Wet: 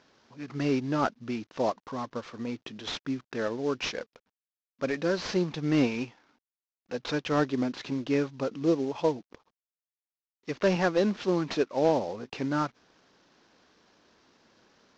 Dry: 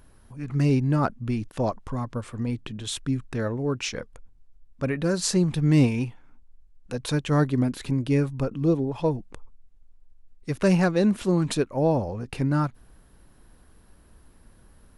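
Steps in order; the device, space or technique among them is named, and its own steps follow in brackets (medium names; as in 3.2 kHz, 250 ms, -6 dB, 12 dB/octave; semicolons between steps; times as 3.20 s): 10.76–11.89 s: high-pass 84 Hz 12 dB/octave; early wireless headset (high-pass 290 Hz 12 dB/octave; CVSD coder 32 kbps)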